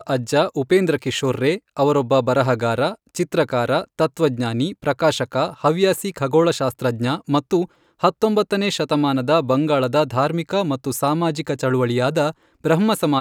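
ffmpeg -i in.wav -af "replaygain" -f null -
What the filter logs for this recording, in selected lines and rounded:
track_gain = -0.2 dB
track_peak = 0.589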